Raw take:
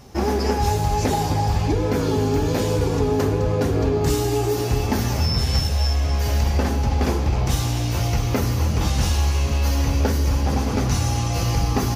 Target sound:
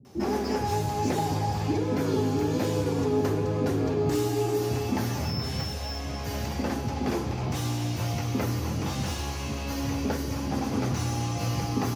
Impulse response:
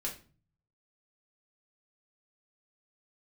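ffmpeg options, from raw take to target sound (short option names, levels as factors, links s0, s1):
-filter_complex "[0:a]acrossover=split=560|3300[s0][s1][s2];[s2]asoftclip=type=tanh:threshold=0.0316[s3];[s0][s1][s3]amix=inputs=3:normalize=0,highpass=f=94:w=0.5412,highpass=f=94:w=1.3066,equalizer=f=320:w=1.4:g=5.5,acrossover=split=370[s4][s5];[s5]adelay=50[s6];[s4][s6]amix=inputs=2:normalize=0,volume=0.501"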